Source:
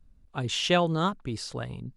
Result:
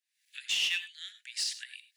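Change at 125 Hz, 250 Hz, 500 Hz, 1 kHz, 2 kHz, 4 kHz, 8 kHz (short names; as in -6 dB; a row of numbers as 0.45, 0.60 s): under -40 dB, under -40 dB, under -35 dB, under -30 dB, -0.5 dB, +0.5 dB, +2.0 dB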